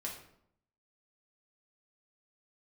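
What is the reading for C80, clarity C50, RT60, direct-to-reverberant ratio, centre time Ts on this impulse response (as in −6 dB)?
9.5 dB, 6.0 dB, 0.70 s, −3.0 dB, 29 ms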